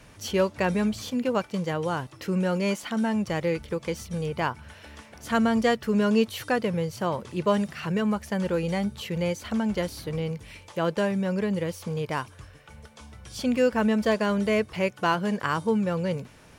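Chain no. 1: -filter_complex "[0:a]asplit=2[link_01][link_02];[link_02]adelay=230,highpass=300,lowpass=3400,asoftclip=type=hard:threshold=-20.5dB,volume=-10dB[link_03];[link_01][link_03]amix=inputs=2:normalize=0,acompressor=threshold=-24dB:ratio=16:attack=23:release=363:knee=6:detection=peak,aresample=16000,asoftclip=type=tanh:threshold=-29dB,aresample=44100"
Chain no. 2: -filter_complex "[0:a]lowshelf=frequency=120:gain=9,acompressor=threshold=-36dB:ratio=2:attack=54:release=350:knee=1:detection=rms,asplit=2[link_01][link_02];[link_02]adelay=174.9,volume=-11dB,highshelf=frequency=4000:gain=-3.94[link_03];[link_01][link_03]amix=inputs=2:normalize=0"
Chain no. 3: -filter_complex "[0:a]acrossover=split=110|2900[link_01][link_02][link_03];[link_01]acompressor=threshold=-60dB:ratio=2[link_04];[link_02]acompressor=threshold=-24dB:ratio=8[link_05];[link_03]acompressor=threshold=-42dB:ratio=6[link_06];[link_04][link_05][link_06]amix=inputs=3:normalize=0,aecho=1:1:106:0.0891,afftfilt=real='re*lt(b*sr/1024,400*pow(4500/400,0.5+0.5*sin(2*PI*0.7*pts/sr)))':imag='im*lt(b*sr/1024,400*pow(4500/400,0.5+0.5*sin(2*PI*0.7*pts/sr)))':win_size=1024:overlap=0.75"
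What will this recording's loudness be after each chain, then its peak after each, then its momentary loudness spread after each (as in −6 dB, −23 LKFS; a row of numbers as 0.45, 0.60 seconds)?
−34.5, −33.0, −31.0 LKFS; −27.0, −17.0, −15.0 dBFS; 6, 8, 7 LU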